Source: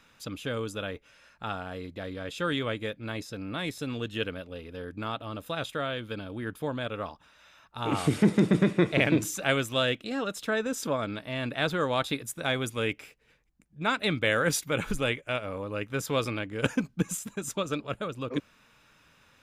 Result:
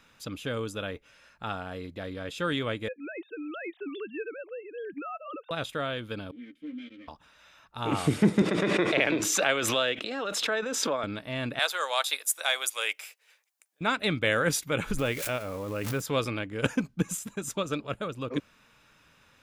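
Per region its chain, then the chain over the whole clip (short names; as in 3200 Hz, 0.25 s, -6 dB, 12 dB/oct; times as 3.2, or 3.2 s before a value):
2.88–5.51 sine-wave speech + compressor 2.5:1, threshold -34 dBFS
6.31–7.08 minimum comb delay 3.8 ms + vowel filter i + doubler 13 ms -3.5 dB
8.42–11.04 three-band isolator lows -15 dB, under 320 Hz, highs -12 dB, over 6300 Hz + backwards sustainer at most 25 dB/s
11.59–13.81 HPF 610 Hz 24 dB/oct + high shelf 3900 Hz +12 dB
14.97–16.02 switching spikes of -31 dBFS + high shelf 3000 Hz -9 dB + backwards sustainer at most 41 dB/s
whole clip: dry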